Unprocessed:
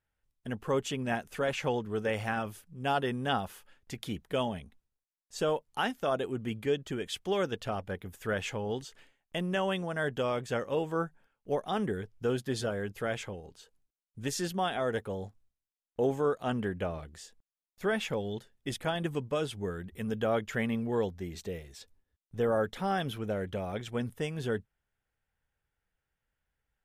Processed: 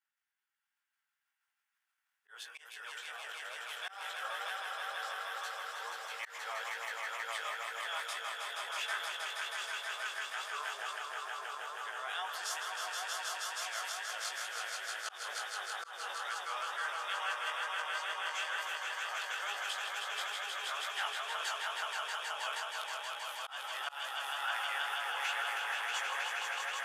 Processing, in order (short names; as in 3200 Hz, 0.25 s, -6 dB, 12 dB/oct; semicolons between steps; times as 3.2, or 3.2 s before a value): whole clip reversed; on a send: swelling echo 0.159 s, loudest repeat 5, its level -4 dB; on the sum: transient shaper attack +1 dB, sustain +8 dB; HPF 1000 Hz 24 dB/oct; chorus 2.2 Hz, delay 17 ms, depth 4.2 ms; auto swell 0.18 s; gain -1 dB